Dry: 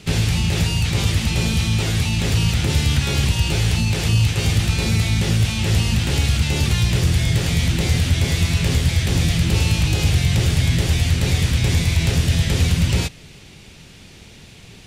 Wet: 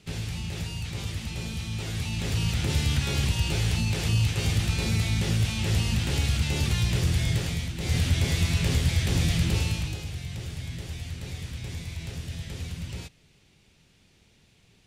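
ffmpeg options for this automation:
ffmpeg -i in.wav -af "volume=3dB,afade=type=in:start_time=1.66:duration=1.06:silence=0.446684,afade=type=out:start_time=7.32:duration=0.43:silence=0.354813,afade=type=in:start_time=7.75:duration=0.22:silence=0.316228,afade=type=out:start_time=9.43:duration=0.61:silence=0.251189" out.wav

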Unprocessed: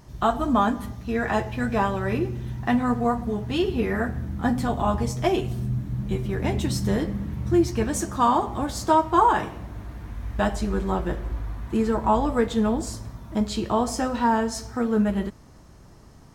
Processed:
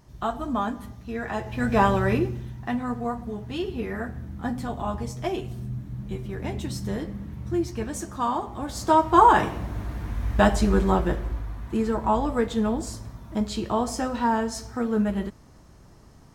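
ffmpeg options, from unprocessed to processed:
ffmpeg -i in.wav -af "volume=16dB,afade=type=in:start_time=1.4:duration=0.52:silence=0.281838,afade=type=out:start_time=1.92:duration=0.6:silence=0.281838,afade=type=in:start_time=8.58:duration=0.9:silence=0.281838,afade=type=out:start_time=10.78:duration=0.68:silence=0.446684" out.wav

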